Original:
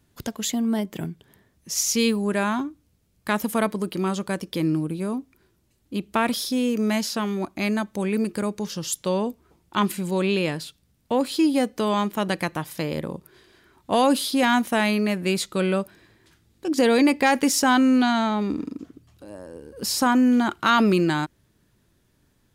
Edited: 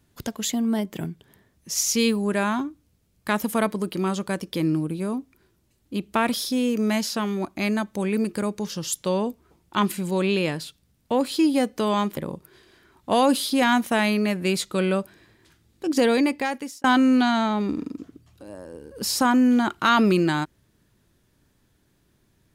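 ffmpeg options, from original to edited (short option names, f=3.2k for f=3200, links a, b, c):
-filter_complex "[0:a]asplit=3[a][b][c];[a]atrim=end=12.172[d];[b]atrim=start=12.978:end=17.65,asetpts=PTS-STARTPTS,afade=t=out:st=3.812:d=0.86[e];[c]atrim=start=17.65,asetpts=PTS-STARTPTS,afade=t=in:d=0.004:c=hsin[f];[e][f]concat=n=2:v=0:a=1[g];[d][g]acrossfade=d=0.004:c1=hsin:c2=hsin"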